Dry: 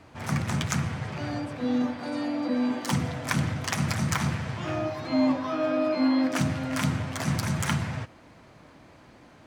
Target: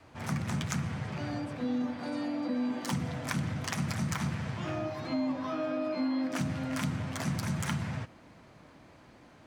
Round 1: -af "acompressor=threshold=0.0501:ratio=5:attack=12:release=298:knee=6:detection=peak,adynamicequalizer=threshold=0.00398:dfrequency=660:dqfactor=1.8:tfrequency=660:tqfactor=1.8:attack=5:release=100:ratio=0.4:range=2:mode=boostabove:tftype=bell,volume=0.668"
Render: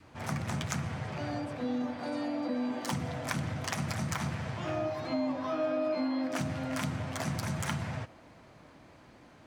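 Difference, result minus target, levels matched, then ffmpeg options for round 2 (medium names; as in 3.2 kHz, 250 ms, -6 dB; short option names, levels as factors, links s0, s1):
500 Hz band +3.5 dB
-af "acompressor=threshold=0.0501:ratio=5:attack=12:release=298:knee=6:detection=peak,adynamicequalizer=threshold=0.00398:dfrequency=190:dqfactor=1.8:tfrequency=190:tqfactor=1.8:attack=5:release=100:ratio=0.4:range=2:mode=boostabove:tftype=bell,volume=0.668"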